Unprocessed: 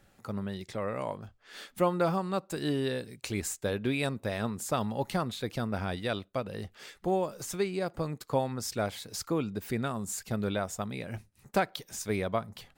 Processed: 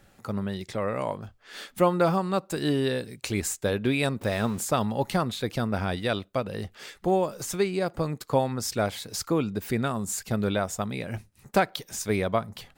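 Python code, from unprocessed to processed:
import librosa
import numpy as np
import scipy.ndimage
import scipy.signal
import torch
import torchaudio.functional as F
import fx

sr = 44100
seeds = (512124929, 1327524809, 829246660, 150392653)

y = fx.zero_step(x, sr, step_db=-43.0, at=(4.21, 4.65))
y = y * librosa.db_to_amplitude(5.0)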